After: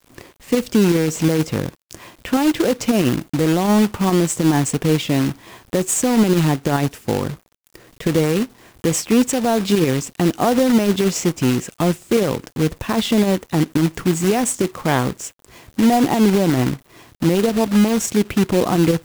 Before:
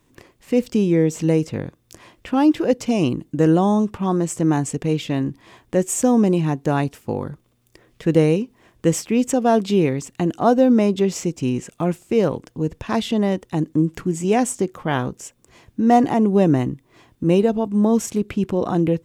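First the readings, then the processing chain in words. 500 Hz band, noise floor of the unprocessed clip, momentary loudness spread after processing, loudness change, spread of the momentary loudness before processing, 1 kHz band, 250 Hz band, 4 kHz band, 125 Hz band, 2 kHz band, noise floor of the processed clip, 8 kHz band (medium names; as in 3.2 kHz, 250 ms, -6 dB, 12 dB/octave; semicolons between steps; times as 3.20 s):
+0.5 dB, -62 dBFS, 8 LU, +1.5 dB, 10 LU, +0.5 dB, +1.5 dB, +8.0 dB, +2.5 dB, +5.5 dB, -57 dBFS, +6.0 dB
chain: companded quantiser 4-bit; peak limiter -14 dBFS, peak gain reduction 8 dB; trim +5.5 dB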